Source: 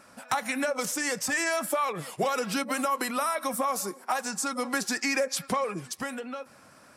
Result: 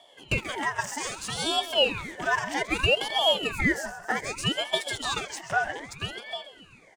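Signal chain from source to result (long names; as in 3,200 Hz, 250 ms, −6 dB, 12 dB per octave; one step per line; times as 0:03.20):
loose part that buzzes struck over −35 dBFS, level −27 dBFS
parametric band 1,400 Hz +9.5 dB 0.78 octaves
in parallel at −3 dB: dead-zone distortion −34.5 dBFS
on the sum: phaser with its sweep stopped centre 2,800 Hz, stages 8
on a send: repeating echo 133 ms, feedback 59%, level −14.5 dB
on the sum: harmonic and percussive parts rebalanced percussive −5 dB
ring modulator whose carrier an LFO sweeps 1,200 Hz, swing 70%, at 0.63 Hz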